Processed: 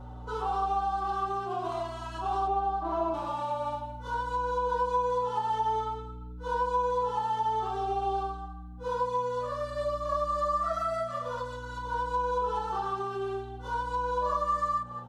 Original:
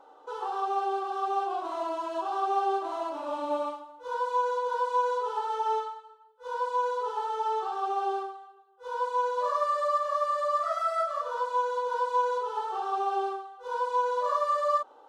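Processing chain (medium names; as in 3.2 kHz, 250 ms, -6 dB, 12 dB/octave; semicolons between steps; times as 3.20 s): 2.47–3.14 s: RIAA curve playback; echo from a far wall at 36 m, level -17 dB; compression, threshold -31 dBFS, peak gain reduction 10 dB; hum 60 Hz, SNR 12 dB; endless flanger 5.1 ms +0.52 Hz; trim +6.5 dB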